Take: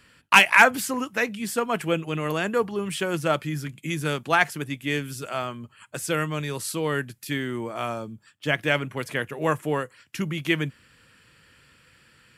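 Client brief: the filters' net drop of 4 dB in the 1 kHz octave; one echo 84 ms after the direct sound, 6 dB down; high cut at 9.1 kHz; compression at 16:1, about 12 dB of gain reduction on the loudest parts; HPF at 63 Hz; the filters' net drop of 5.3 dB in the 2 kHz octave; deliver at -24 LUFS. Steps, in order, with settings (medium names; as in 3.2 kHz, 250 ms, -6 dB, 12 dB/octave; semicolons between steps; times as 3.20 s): high-pass 63 Hz; low-pass 9.1 kHz; peaking EQ 1 kHz -3.5 dB; peaking EQ 2 kHz -6 dB; compression 16:1, threshold -25 dBFS; delay 84 ms -6 dB; trim +7.5 dB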